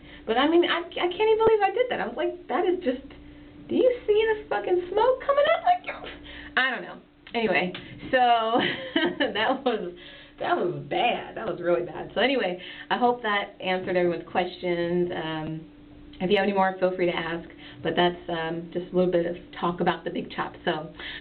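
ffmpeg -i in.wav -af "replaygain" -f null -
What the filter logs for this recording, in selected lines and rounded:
track_gain = +4.8 dB
track_peak = 0.204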